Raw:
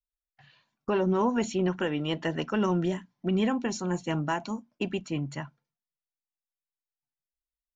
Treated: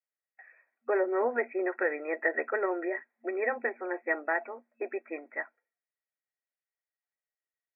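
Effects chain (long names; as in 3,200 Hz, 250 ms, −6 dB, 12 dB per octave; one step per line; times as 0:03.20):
phaser with its sweep stopped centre 1,000 Hz, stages 6
brick-wall band-pass 230–2,600 Hz
hollow resonant body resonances 1,000/1,900 Hz, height 15 dB, ringing for 60 ms
level +3 dB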